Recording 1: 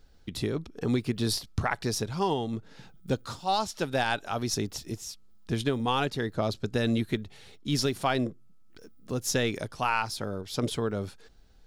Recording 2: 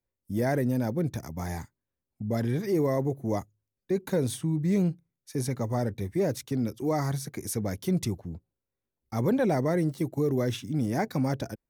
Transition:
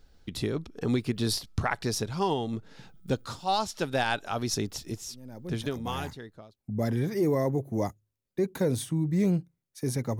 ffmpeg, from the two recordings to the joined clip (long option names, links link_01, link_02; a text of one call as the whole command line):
ffmpeg -i cue0.wav -i cue1.wav -filter_complex "[0:a]apad=whole_dur=10.19,atrim=end=10.19,atrim=end=6.57,asetpts=PTS-STARTPTS[link_01];[1:a]atrim=start=0.59:end=5.71,asetpts=PTS-STARTPTS[link_02];[link_01][link_02]acrossfade=duration=1.5:curve1=tri:curve2=tri" out.wav